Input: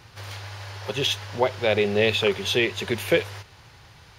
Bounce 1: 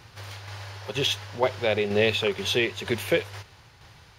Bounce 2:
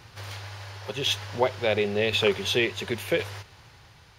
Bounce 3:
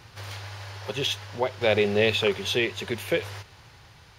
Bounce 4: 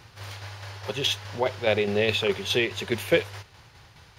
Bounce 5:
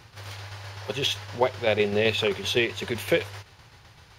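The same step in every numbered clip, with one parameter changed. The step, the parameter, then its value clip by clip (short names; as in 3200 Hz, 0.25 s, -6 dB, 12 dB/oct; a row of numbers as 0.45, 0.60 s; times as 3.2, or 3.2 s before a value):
tremolo, rate: 2.1, 0.94, 0.62, 4.8, 7.8 Hz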